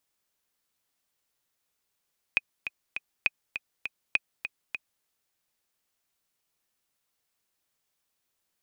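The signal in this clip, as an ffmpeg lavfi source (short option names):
-f lavfi -i "aevalsrc='pow(10,(-9-10*gte(mod(t,3*60/202),60/202))/20)*sin(2*PI*2500*mod(t,60/202))*exp(-6.91*mod(t,60/202)/0.03)':d=2.67:s=44100"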